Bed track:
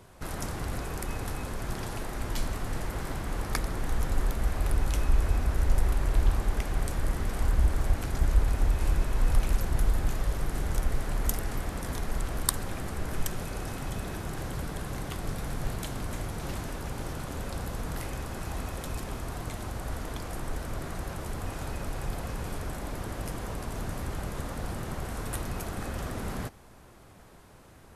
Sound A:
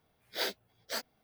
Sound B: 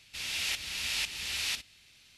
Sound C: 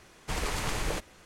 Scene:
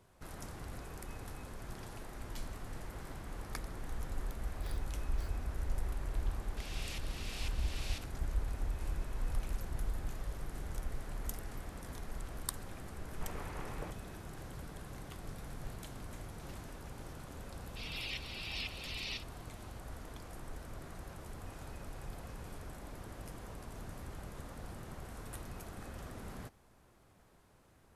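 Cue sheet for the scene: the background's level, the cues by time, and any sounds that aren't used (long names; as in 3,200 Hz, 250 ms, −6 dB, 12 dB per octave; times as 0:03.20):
bed track −12 dB
0:04.28: mix in A −16 dB + downward compressor 2 to 1, threshold −41 dBFS
0:06.43: mix in B −14 dB
0:12.92: mix in C −11 dB + low-pass filter 1,700 Hz
0:17.62: mix in B −7 dB + gate on every frequency bin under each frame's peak −10 dB strong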